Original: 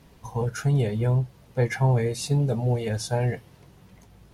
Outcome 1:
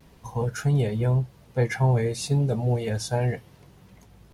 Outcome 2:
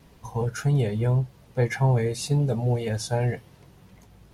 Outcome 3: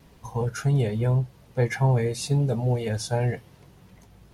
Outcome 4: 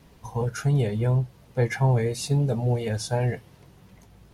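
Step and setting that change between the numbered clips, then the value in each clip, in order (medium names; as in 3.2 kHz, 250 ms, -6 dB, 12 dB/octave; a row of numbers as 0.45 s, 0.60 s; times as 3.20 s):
vibrato, rate: 0.34 Hz, 1.8 Hz, 1.2 Hz, 2.9 Hz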